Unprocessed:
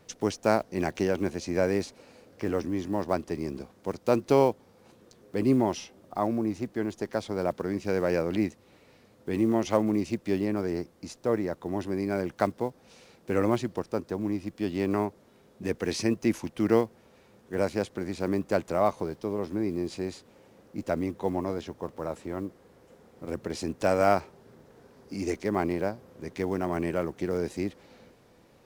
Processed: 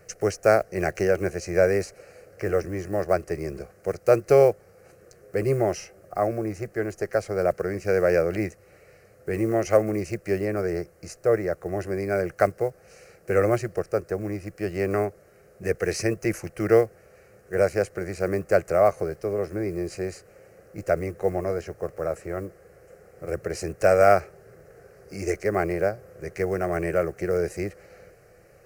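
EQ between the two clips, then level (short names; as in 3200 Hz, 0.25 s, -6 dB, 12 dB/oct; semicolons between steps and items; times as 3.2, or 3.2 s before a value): fixed phaser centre 950 Hz, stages 6; +7.5 dB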